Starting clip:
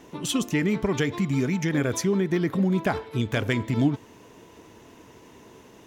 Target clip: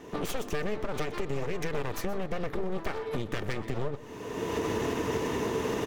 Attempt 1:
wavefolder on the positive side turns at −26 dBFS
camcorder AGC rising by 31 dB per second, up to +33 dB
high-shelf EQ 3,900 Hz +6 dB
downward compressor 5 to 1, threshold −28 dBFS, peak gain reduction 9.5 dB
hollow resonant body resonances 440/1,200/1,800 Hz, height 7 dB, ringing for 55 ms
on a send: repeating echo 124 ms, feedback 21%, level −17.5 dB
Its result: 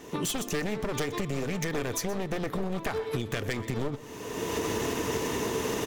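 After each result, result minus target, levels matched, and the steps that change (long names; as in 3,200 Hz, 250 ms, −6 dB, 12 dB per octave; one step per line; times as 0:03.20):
wavefolder on the positive side: distortion −13 dB; 8,000 Hz band +7.0 dB
change: wavefolder on the positive side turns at −37.5 dBFS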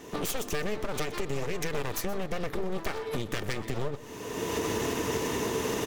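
8,000 Hz band +6.5 dB
change: high-shelf EQ 3,900 Hz −4.5 dB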